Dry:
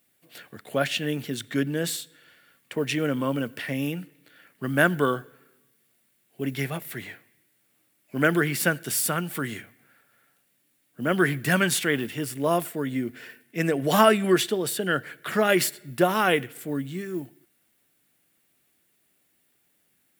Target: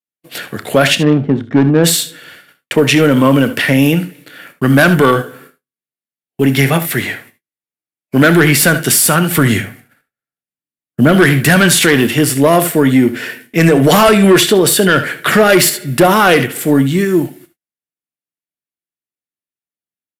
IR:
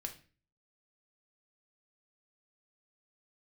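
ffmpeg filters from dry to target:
-filter_complex "[0:a]agate=range=-47dB:threshold=-57dB:ratio=16:detection=peak,asettb=1/sr,asplit=3[link_01][link_02][link_03];[link_01]atrim=end=9.384[link_04];[link_02]atrim=start=9.38:end=11.13,asetpts=PTS-STARTPTS,afade=type=in:duration=0.004:curve=qsin,afade=type=out:start_time=1.746:duration=0.004:curve=qsin,lowshelf=frequency=180:gain=9.5[link_05];[link_03]atrim=start=11.126[link_06];[link_04][link_05]acrossfade=duration=0.004:curve1=hsin:curve2=qsin[link_07];[link_07][link_06]acrossfade=duration=0.004:curve1=qsin:curve2=hsin,asoftclip=type=tanh:threshold=-18dB,asplit=3[link_08][link_09][link_10];[link_08]afade=type=out:start_time=0.94:duration=0.02[link_11];[link_09]adynamicsmooth=sensitivity=1:basefreq=540,afade=type=in:start_time=0.94:duration=0.02,afade=type=out:start_time=1.83:duration=0.02[link_12];[link_10]afade=type=in:start_time=1.83:duration=0.02[link_13];[link_11][link_12][link_13]amix=inputs=3:normalize=0,asplit=2[link_14][link_15];[link_15]aecho=0:1:30|66|78:0.158|0.158|0.133[link_16];[link_14][link_16]amix=inputs=2:normalize=0,aresample=32000,aresample=44100,alimiter=level_in=20.5dB:limit=-1dB:release=50:level=0:latency=1,volume=-1dB"

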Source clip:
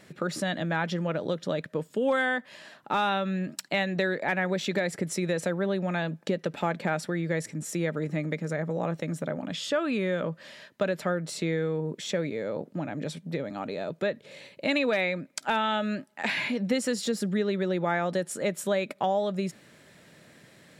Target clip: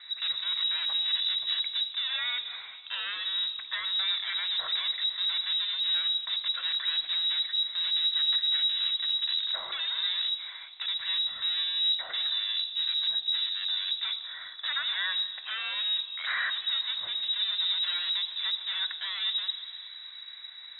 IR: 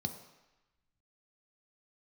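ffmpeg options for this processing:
-filter_complex "[0:a]lowshelf=frequency=230:gain=10,asettb=1/sr,asplit=3[link_01][link_02][link_03];[link_01]atrim=end=10.034[link_04];[link_02]atrim=start=10.03:end=10.95,asetpts=PTS-STARTPTS,afade=type=in:duration=0.004:curve=qsin,afade=type=out:start_time=0.916:duration=0.004:curve=qsin,acrossover=split=1000|2800[link_05][link_06][link_07];[link_05]acompressor=threshold=-25dB:ratio=4[link_08];[link_06]acompressor=threshold=-39dB:ratio=4[link_09];[link_07]acompressor=threshold=-59dB:ratio=4[link_10];[link_08][link_09][link_10]amix=inputs=3:normalize=0[link_11];[link_03]atrim=start=10.946[link_12];[link_04][link_11]acrossfade=duration=0.004:curve1=hsin:curve2=qsin[link_13];[link_13][link_12]acrossfade=duration=0.004:curve1=qsin:curve2=hsin,volume=31.5dB,asoftclip=hard,volume=-31.5dB[link_14];[1:a]atrim=start_sample=2205,asetrate=22491,aresample=44100[link_15];[link_14][link_15]afir=irnorm=-1:irlink=0,lowpass=frequency=3400:width_type=q:width=0.5098,lowpass=frequency=3400:width_type=q:width=0.6013,lowpass=frequency=3400:width_type=q:width=0.9,lowpass=frequency=3400:width_type=q:width=2.563,afreqshift=-4000,volume=-5.5dB"

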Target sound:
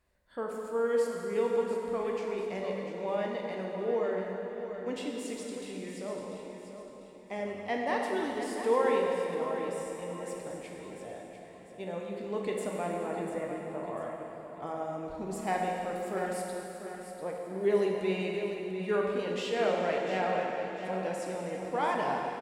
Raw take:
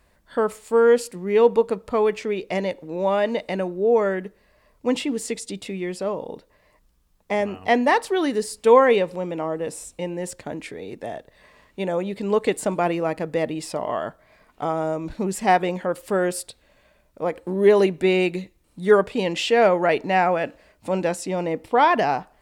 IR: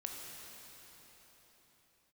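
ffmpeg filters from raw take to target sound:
-filter_complex "[0:a]asettb=1/sr,asplit=3[link_01][link_02][link_03];[link_01]atrim=end=12.874[link_04];[link_02]atrim=start=12.87:end=14.03,asetpts=PTS-STARTPTS,afade=type=in:duration=0.004:curve=qsin,afade=type=out:start_time=1.156:duration=0.004:curve=qsin,lowpass=frequency=2200:width=0.5412,lowpass=frequency=2200:width=1.3066[link_05];[link_03]atrim=start=14.026[link_06];[link_04][link_05]acrossfade=duration=0.004:curve1=hsin:curve2=qsin[link_07];[link_07][link_06]acrossfade=duration=0.004:curve1=qsin:curve2=hsin,aecho=1:1:695|1390|2085|2780:0.316|0.123|0.0481|0.0188[link_08];[1:a]atrim=start_sample=2205,asetrate=66150,aresample=44100[link_09];[link_08][link_09]afir=irnorm=-1:irlink=0,volume=-7.5dB"

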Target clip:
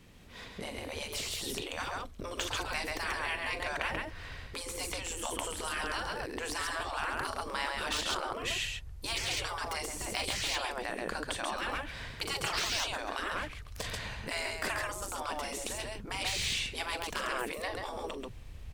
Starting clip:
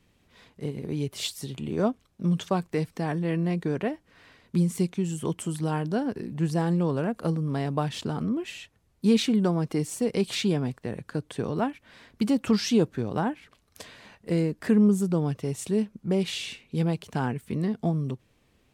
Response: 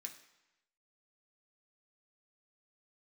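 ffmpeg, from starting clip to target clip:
-af "aecho=1:1:41|136:0.237|0.596,asubboost=boost=11.5:cutoff=72,afftfilt=real='re*lt(hypot(re,im),0.0562)':imag='im*lt(hypot(re,im),0.0562)':win_size=1024:overlap=0.75,deesser=1,volume=7.5dB"

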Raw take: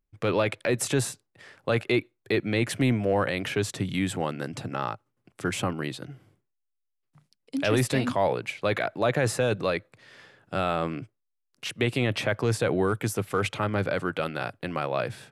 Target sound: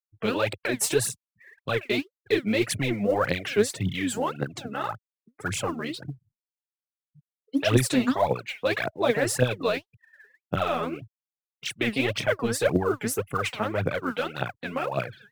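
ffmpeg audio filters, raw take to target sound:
ffmpeg -i in.wav -af "afftfilt=real='re*gte(hypot(re,im),0.01)':imag='im*gte(hypot(re,im),0.01)':win_size=1024:overlap=0.75,aphaser=in_gain=1:out_gain=1:delay=5:decay=0.78:speed=1.8:type=triangular,highshelf=frequency=5400:gain=5.5,volume=-3.5dB" out.wav

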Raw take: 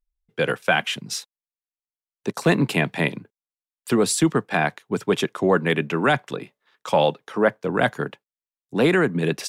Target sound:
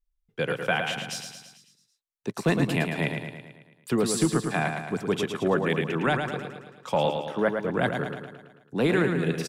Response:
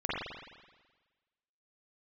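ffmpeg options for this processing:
-af "lowshelf=frequency=110:gain=8.5,aecho=1:1:110|220|330|440|550|660|770:0.501|0.281|0.157|0.088|0.0493|0.0276|0.0155,volume=-6.5dB"

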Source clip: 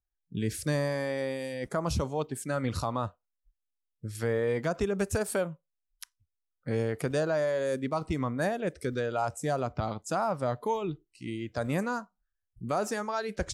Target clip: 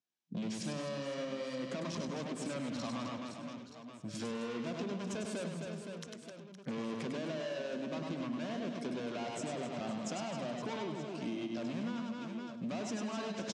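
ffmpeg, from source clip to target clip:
ffmpeg -i in.wav -filter_complex "[0:a]asoftclip=type=hard:threshold=-35.5dB,highpass=frequency=170:width=0.5412,highpass=frequency=170:width=1.3066,equalizer=frequency=230:width_type=q:width=4:gain=5,equalizer=frequency=460:width_type=q:width=4:gain=-5,equalizer=frequency=830:width_type=q:width=4:gain=-7,equalizer=frequency=1300:width_type=q:width=4:gain=-6,equalizer=frequency=1900:width_type=q:width=4:gain=-7,equalizer=frequency=4500:width_type=q:width=4:gain=-3,lowpass=frequency=6500:width=0.5412,lowpass=frequency=6500:width=1.3066,asplit=2[link_01][link_02];[link_02]aecho=0:1:100|260|516|925.6|1581:0.631|0.398|0.251|0.158|0.1[link_03];[link_01][link_03]amix=inputs=2:normalize=0,acompressor=threshold=-40dB:ratio=6,asplit=2[link_04][link_05];[link_05]aecho=0:1:101:0.266[link_06];[link_04][link_06]amix=inputs=2:normalize=0,volume=4.5dB" out.wav

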